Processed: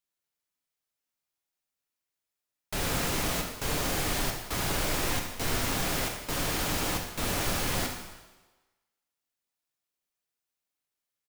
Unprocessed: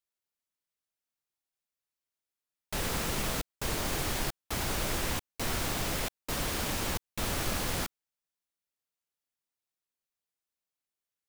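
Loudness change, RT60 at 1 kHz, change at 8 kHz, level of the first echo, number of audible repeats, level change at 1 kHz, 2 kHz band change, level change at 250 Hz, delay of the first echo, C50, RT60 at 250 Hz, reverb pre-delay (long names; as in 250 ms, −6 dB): +3.0 dB, 1.2 s, +3.0 dB, −10.5 dB, 1, +3.0 dB, +3.5 dB, +3.0 dB, 73 ms, 4.5 dB, 1.1 s, 6 ms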